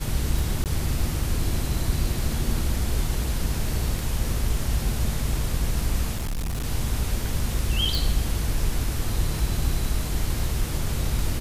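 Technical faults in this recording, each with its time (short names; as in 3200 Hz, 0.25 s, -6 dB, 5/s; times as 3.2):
tick 33 1/3 rpm
0.64–0.66 gap 18 ms
6.16–6.65 clipped -24.5 dBFS
7.95 pop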